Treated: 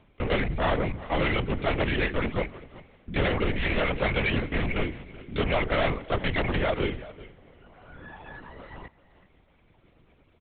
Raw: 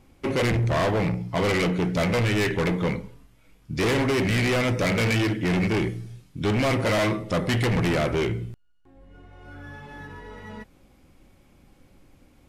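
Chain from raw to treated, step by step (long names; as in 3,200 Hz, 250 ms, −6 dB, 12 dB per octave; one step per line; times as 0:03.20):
reverb reduction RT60 0.65 s
low-shelf EQ 210 Hz −8.5 dB
tempo change 1.2×
single-tap delay 382 ms −18.5 dB
four-comb reverb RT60 2.6 s, combs from 30 ms, DRR 20 dB
linear-prediction vocoder at 8 kHz whisper
level +1 dB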